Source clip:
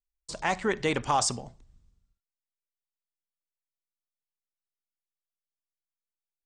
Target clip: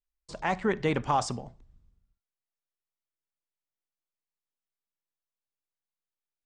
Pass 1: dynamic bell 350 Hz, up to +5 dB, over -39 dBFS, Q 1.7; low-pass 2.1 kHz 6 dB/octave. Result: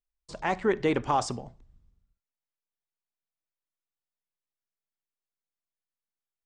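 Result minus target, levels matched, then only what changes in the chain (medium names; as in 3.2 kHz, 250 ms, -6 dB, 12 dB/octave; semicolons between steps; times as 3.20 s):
125 Hz band -4.0 dB
change: dynamic bell 170 Hz, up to +5 dB, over -39 dBFS, Q 1.7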